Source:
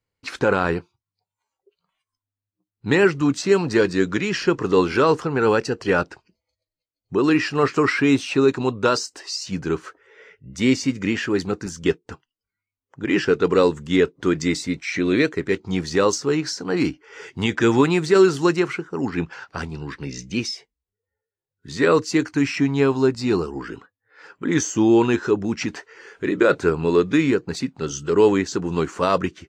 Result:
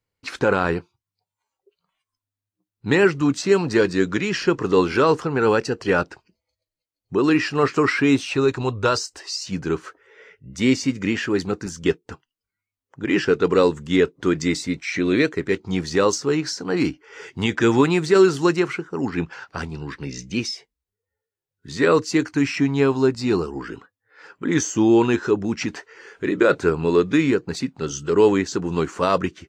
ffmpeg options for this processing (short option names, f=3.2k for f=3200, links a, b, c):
-filter_complex "[0:a]asplit=3[a][b][c];[a]afade=t=out:st=8.23:d=0.02[d];[b]asubboost=boost=11:cutoff=60,afade=t=in:st=8.23:d=0.02,afade=t=out:st=9.2:d=0.02[e];[c]afade=t=in:st=9.2:d=0.02[f];[d][e][f]amix=inputs=3:normalize=0"